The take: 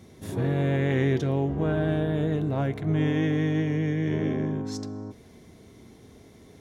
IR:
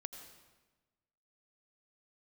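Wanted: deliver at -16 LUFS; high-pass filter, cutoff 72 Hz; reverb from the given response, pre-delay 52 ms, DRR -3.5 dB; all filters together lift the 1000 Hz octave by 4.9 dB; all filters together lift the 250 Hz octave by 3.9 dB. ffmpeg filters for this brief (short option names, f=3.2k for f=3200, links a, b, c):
-filter_complex "[0:a]highpass=72,equalizer=f=250:t=o:g=5,equalizer=f=1k:t=o:g=6.5,asplit=2[a][b];[1:a]atrim=start_sample=2205,adelay=52[c];[b][c]afir=irnorm=-1:irlink=0,volume=6.5dB[d];[a][d]amix=inputs=2:normalize=0,volume=2dB"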